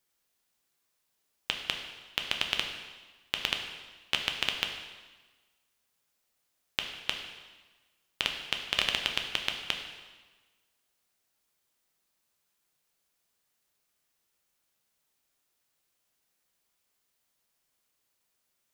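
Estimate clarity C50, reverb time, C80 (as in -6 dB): 6.0 dB, 1.3 s, 7.5 dB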